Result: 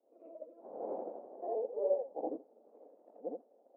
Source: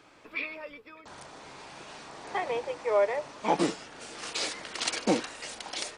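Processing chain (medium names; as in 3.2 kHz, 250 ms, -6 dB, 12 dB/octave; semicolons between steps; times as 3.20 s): short-time spectra conjugated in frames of 248 ms; Doppler pass-by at 1.44 s, 20 m/s, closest 2.5 m; granular stretch 0.63×, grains 167 ms; in parallel at -11 dB: companded quantiser 4-bit; on the sum: Chebyshev band-pass 230–750 Hz, order 3; peaking EQ 520 Hz +11 dB 0.51 oct; trim +11 dB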